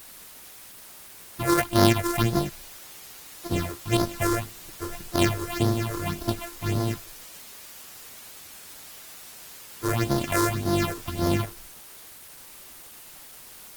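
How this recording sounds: a buzz of ramps at a fixed pitch in blocks of 128 samples; phasing stages 6, 1.8 Hz, lowest notch 180–2600 Hz; a quantiser's noise floor 8-bit, dither triangular; Opus

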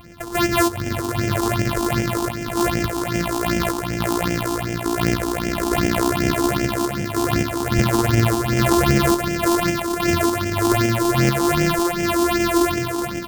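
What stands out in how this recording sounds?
a buzz of ramps at a fixed pitch in blocks of 128 samples; phasing stages 6, 2.6 Hz, lowest notch 140–1100 Hz; random-step tremolo

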